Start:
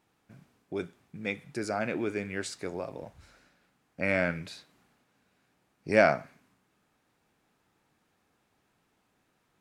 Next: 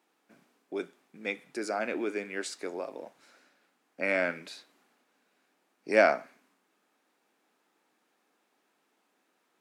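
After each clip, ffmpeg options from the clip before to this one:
-af "highpass=f=250:w=0.5412,highpass=f=250:w=1.3066"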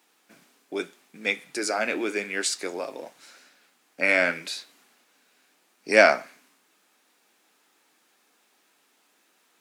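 -af "highshelf=f=2k:g=11,flanger=delay=4:depth=3.8:regen=-66:speed=0.84:shape=triangular,volume=7.5dB"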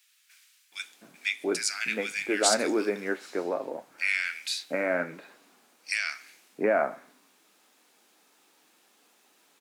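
-filter_complex "[0:a]alimiter=limit=-13dB:level=0:latency=1:release=243,acrossover=split=1700[a][b];[a]adelay=720[c];[c][b]amix=inputs=2:normalize=0,volume=2.5dB"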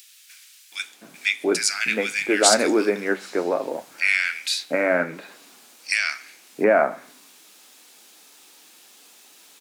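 -filter_complex "[0:a]bandreject=f=64.21:t=h:w=4,bandreject=f=128.42:t=h:w=4,bandreject=f=192.63:t=h:w=4,acrossover=split=2700[a][b];[b]acompressor=mode=upward:threshold=-49dB:ratio=2.5[c];[a][c]amix=inputs=2:normalize=0,volume=7dB"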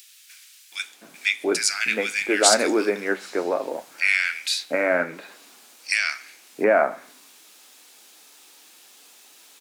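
-af "equalizer=f=110:t=o:w=2.4:g=-6"

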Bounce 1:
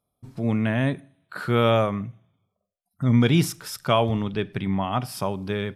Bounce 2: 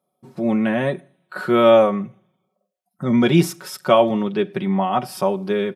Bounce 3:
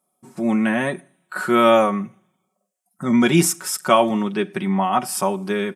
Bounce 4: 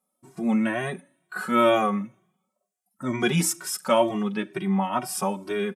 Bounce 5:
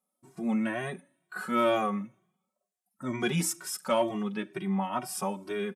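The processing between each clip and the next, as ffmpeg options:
-af "highpass=170,equalizer=f=480:t=o:w=2.6:g=7.5,aecho=1:1:5.4:0.73,volume=-1dB"
-af "equalizer=f=125:t=o:w=1:g=-10,equalizer=f=500:t=o:w=1:g=-9,equalizer=f=4k:t=o:w=1:g=-7,equalizer=f=8k:t=o:w=1:g=11,volume=4.5dB"
-filter_complex "[0:a]asplit=2[a][b];[b]adelay=2,afreqshift=2.1[c];[a][c]amix=inputs=2:normalize=1,volume=-2dB"
-af "aeval=exprs='0.447*(cos(1*acos(clip(val(0)/0.447,-1,1)))-cos(1*PI/2))+0.0126*(cos(5*acos(clip(val(0)/0.447,-1,1)))-cos(5*PI/2))':c=same,volume=-6.5dB"

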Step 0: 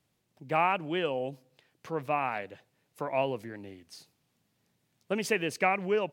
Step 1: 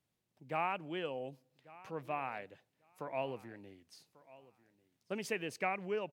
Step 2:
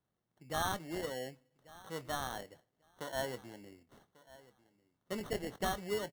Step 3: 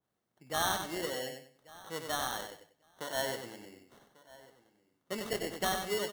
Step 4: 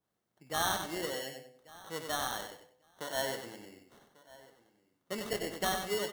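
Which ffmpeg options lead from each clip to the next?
-af "aecho=1:1:1143|2286:0.0944|0.016,volume=-9dB"
-filter_complex "[0:a]equalizer=f=14k:w=0.3:g=-5.5,acrusher=samples=18:mix=1:aa=0.000001,asplit=2[a][b];[b]adelay=24,volume=-13.5dB[c];[a][c]amix=inputs=2:normalize=0"
-af "lowshelf=f=160:g=-9,aecho=1:1:95|190|285:0.501|0.13|0.0339,adynamicequalizer=threshold=0.00251:dfrequency=2000:dqfactor=0.7:tfrequency=2000:tqfactor=0.7:attack=5:release=100:ratio=0.375:range=2:mode=boostabove:tftype=highshelf,volume=2.5dB"
-af "bandreject=f=126.5:t=h:w=4,bandreject=f=253:t=h:w=4,bandreject=f=379.5:t=h:w=4,bandreject=f=506:t=h:w=4,bandreject=f=632.5:t=h:w=4,bandreject=f=759:t=h:w=4,bandreject=f=885.5:t=h:w=4,bandreject=f=1.012k:t=h:w=4,bandreject=f=1.1385k:t=h:w=4,bandreject=f=1.265k:t=h:w=4,bandreject=f=1.3915k:t=h:w=4,bandreject=f=1.518k:t=h:w=4,bandreject=f=1.6445k:t=h:w=4,bandreject=f=1.771k:t=h:w=4,bandreject=f=1.8975k:t=h:w=4,bandreject=f=2.024k:t=h:w=4,bandreject=f=2.1505k:t=h:w=4,bandreject=f=2.277k:t=h:w=4,bandreject=f=2.4035k:t=h:w=4,bandreject=f=2.53k:t=h:w=4,bandreject=f=2.6565k:t=h:w=4,bandreject=f=2.783k:t=h:w=4,bandreject=f=2.9095k:t=h:w=4,bandreject=f=3.036k:t=h:w=4,bandreject=f=3.1625k:t=h:w=4,bandreject=f=3.289k:t=h:w=4,bandreject=f=3.4155k:t=h:w=4,bandreject=f=3.542k:t=h:w=4,bandreject=f=3.6685k:t=h:w=4"

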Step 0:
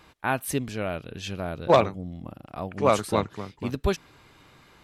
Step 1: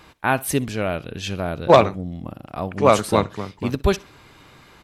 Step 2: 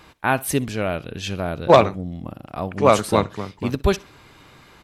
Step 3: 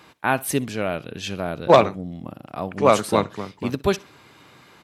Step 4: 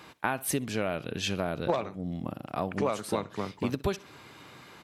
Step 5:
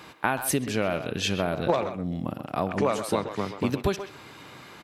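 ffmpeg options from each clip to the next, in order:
-af "aecho=1:1:63|126:0.0794|0.0214,volume=6dB"
-af anull
-af "highpass=120,volume=-1dB"
-af "acompressor=threshold=-25dB:ratio=12"
-filter_complex "[0:a]asplit=2[a][b];[b]adelay=130,highpass=300,lowpass=3.4k,asoftclip=type=hard:threshold=-21dB,volume=-9dB[c];[a][c]amix=inputs=2:normalize=0,volume=4dB"

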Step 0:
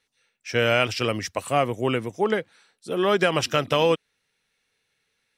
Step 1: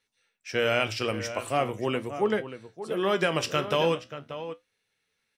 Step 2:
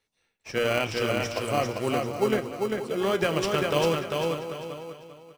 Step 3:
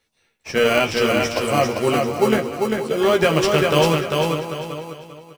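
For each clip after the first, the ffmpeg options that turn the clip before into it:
-filter_complex "[0:a]bandreject=f=60:t=h:w=6,bandreject=f=120:t=h:w=6,asplit=2[a][b];[b]adelay=583.1,volume=-11dB,highshelf=f=4k:g=-13.1[c];[a][c]amix=inputs=2:normalize=0,flanger=delay=9.4:depth=9.8:regen=66:speed=0.42:shape=sinusoidal"
-filter_complex "[0:a]asplit=2[a][b];[b]acrusher=samples=25:mix=1:aa=0.000001,volume=-7.5dB[c];[a][c]amix=inputs=2:normalize=0,aecho=1:1:396|792|1188|1584:0.668|0.214|0.0684|0.0219,volume=-2dB"
-filter_complex "[0:a]asplit=2[a][b];[b]adelay=13,volume=-5dB[c];[a][c]amix=inputs=2:normalize=0,volume=7dB"

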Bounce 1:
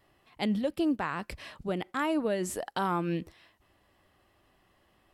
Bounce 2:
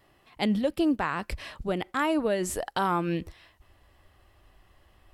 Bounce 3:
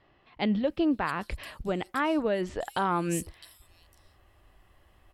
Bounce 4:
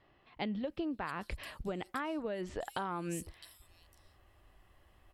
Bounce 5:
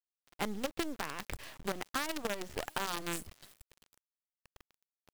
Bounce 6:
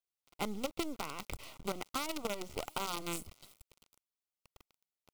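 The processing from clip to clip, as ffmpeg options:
-af "asubboost=boost=5.5:cutoff=81,volume=4dB"
-filter_complex "[0:a]acrossover=split=4700[a][b];[b]adelay=660[c];[a][c]amix=inputs=2:normalize=0,volume=-1dB"
-af "acompressor=threshold=-30dB:ratio=10,volume=-3.5dB"
-af "acrusher=bits=6:dc=4:mix=0:aa=0.000001,volume=1.5dB"
-af "asuperstop=centerf=1700:order=4:qfactor=3.3,volume=-1dB"

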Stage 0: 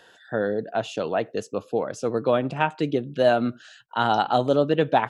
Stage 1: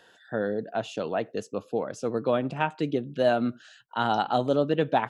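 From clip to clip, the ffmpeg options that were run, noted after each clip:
-af "equalizer=f=220:w=1.7:g=2.5,volume=-4dB"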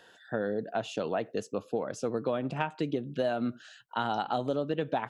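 -af "acompressor=threshold=-26dB:ratio=6"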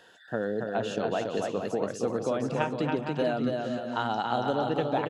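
-af "aecho=1:1:280|462|580.3|657.2|707.2:0.631|0.398|0.251|0.158|0.1,volume=1dB"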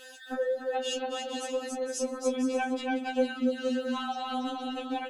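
-af "aexciter=amount=2.2:drive=4.2:freq=2.2k,acompressor=threshold=-35dB:ratio=5,afftfilt=real='re*3.46*eq(mod(b,12),0)':imag='im*3.46*eq(mod(b,12),0)':win_size=2048:overlap=0.75,volume=7.5dB"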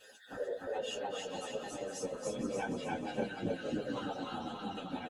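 -filter_complex "[0:a]afftfilt=real='hypot(re,im)*cos(2*PI*random(0))':imag='hypot(re,im)*sin(2*PI*random(1))':win_size=512:overlap=0.75,asplit=2[a][b];[b]aecho=0:1:300|600|900|1200|1500:0.631|0.265|0.111|0.0467|0.0196[c];[a][c]amix=inputs=2:normalize=0,asplit=2[d][e];[e]adelay=8.8,afreqshift=-1.4[f];[d][f]amix=inputs=2:normalize=1"

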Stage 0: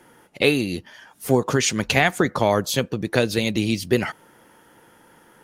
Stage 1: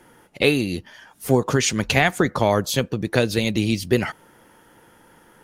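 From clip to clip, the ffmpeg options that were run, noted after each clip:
-af "lowshelf=f=72:g=8.5"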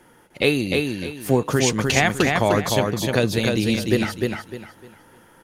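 -af "aecho=1:1:303|606|909|1212:0.668|0.187|0.0524|0.0147,volume=-1dB"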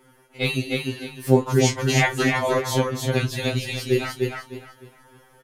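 -filter_complex "[0:a]flanger=delay=5.1:depth=8.2:regen=39:speed=1.9:shape=sinusoidal,asplit=2[a][b];[b]adelay=30,volume=-12dB[c];[a][c]amix=inputs=2:normalize=0,afftfilt=real='re*2.45*eq(mod(b,6),0)':imag='im*2.45*eq(mod(b,6),0)':win_size=2048:overlap=0.75,volume=3.5dB"

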